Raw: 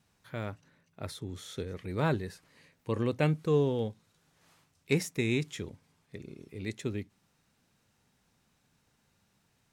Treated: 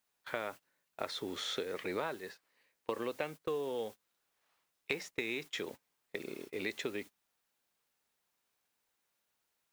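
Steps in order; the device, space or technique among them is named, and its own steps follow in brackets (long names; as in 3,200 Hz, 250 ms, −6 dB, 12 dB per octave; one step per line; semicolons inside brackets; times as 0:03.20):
baby monitor (band-pass filter 480–4,400 Hz; downward compressor 12 to 1, threshold −45 dBFS, peak gain reduction 20 dB; white noise bed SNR 18 dB; noise gate −57 dBFS, range −23 dB)
level +11.5 dB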